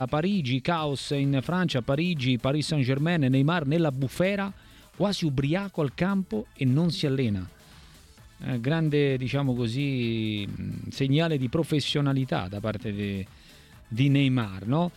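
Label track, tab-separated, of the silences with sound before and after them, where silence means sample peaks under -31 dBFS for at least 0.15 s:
4.500000	5.000000	silence
6.420000	6.610000	silence
7.450000	8.440000	silence
13.230000	13.920000	silence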